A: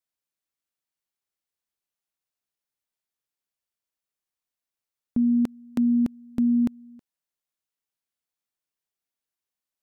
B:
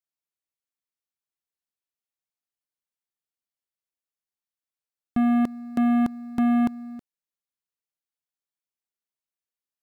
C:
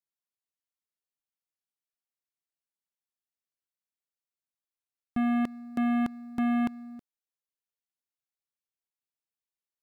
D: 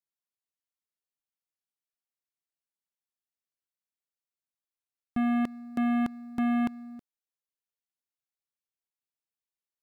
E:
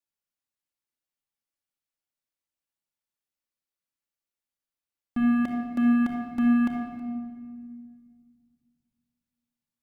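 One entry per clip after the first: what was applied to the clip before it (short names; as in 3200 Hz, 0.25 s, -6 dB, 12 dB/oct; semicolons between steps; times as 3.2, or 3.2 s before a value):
sample leveller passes 3; gain -1 dB
dynamic EQ 2400 Hz, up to +7 dB, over -46 dBFS, Q 0.8; gain -6 dB
nothing audible
shoebox room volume 3300 m³, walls mixed, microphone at 2.4 m; gain -1.5 dB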